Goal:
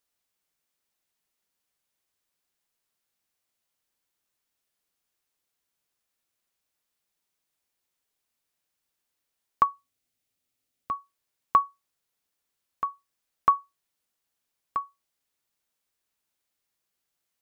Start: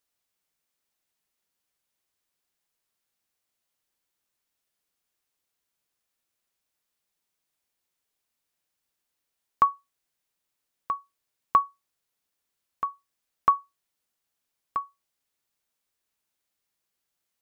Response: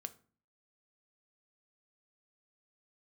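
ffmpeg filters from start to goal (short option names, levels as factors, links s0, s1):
-filter_complex "[0:a]asettb=1/sr,asplit=3[s0][s1][s2];[s0]atrim=end=9.634[s3];[s1]atrim=start=9.63:end=10.91,asetpts=PTS-STARTPTS,afade=t=in:d=0.004:c=qsin,afade=t=out:st=1.276:d=0.004:c=qsin,equalizer=f=100:t=o:w=0.33:g=12,equalizer=f=250:t=o:w=0.33:g=8,equalizer=f=1000:t=o:w=0.33:g=-9,equalizer=f=1600:t=o:w=0.33:g=-5[s4];[s2]atrim=start=10.906[s5];[s3][s4]acrossfade=d=0.004:c1=hsin:c2=qsin[s6];[s6][s5]acrossfade=d=0.004:c1=qsin:c2=hsin"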